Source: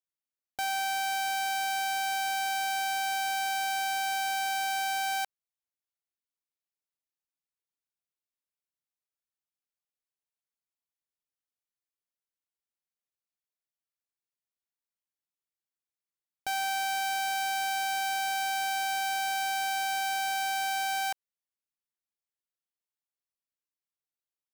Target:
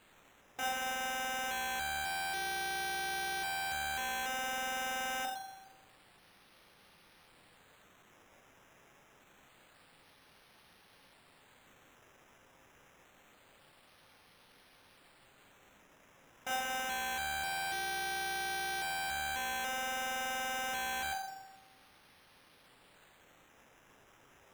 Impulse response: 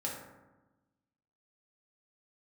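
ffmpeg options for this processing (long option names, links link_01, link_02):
-filter_complex "[0:a]aeval=exprs='val(0)+0.5*0.00422*sgn(val(0))':channel_layout=same[link_01];[1:a]atrim=start_sample=2205,asetrate=42336,aresample=44100[link_02];[link_01][link_02]afir=irnorm=-1:irlink=0,acrusher=samples=8:mix=1:aa=0.000001:lfo=1:lforange=4.8:lforate=0.26,volume=-6dB"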